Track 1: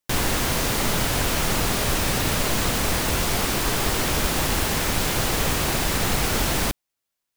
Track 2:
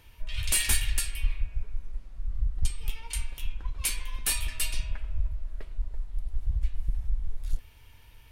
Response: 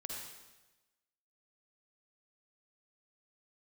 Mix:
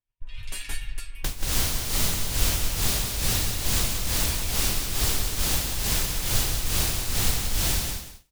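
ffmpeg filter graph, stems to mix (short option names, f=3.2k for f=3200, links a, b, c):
-filter_complex "[0:a]acrossover=split=120|3000[a][b][c];[b]acompressor=threshold=-34dB:ratio=10[d];[a][d][c]amix=inputs=3:normalize=0,tremolo=f=2.3:d=0.9,adelay=1150,volume=2.5dB,asplit=2[e][f];[f]volume=-5.5dB[g];[1:a]highshelf=f=4.1k:g=-8.5,aecho=1:1:7.2:0.67,volume=-6.5dB[h];[g]aecho=0:1:183|366|549|732:1|0.27|0.0729|0.0197[i];[e][h][i]amix=inputs=3:normalize=0,agate=range=-33dB:threshold=-37dB:ratio=3:detection=peak"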